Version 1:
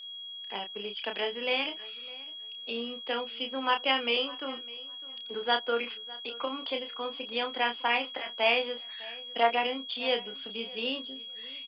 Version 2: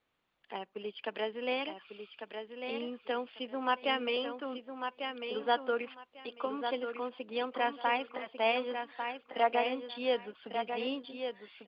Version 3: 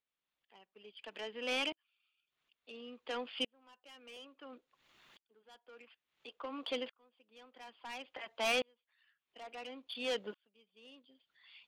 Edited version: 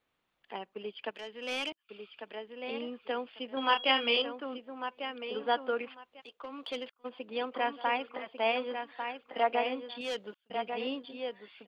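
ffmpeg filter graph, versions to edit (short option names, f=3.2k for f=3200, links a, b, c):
-filter_complex "[2:a]asplit=3[a][b][c];[1:a]asplit=5[d][e][f][g][h];[d]atrim=end=1.112[i];[a]atrim=start=1.108:end=1.892[j];[e]atrim=start=1.888:end=3.572[k];[0:a]atrim=start=3.568:end=4.222[l];[f]atrim=start=4.218:end=6.22[m];[b]atrim=start=6.2:end=7.06[n];[g]atrim=start=7.04:end=10.012[o];[c]atrim=start=10.008:end=10.502[p];[h]atrim=start=10.498[q];[i][j]acrossfade=d=0.004:c1=hsin:c2=hsin[r];[r][k]acrossfade=d=0.004:c1=hsin:c2=hsin[s];[s][l]acrossfade=d=0.004:c1=hsin:c2=hsin[t];[t][m]acrossfade=d=0.004:c1=hsin:c2=hsin[u];[u][n]acrossfade=d=0.02:c1=tri:c2=tri[v];[v][o]acrossfade=d=0.02:c1=tri:c2=tri[w];[w][p]acrossfade=d=0.004:c1=hsin:c2=hsin[x];[x][q]acrossfade=d=0.004:c1=hsin:c2=hsin"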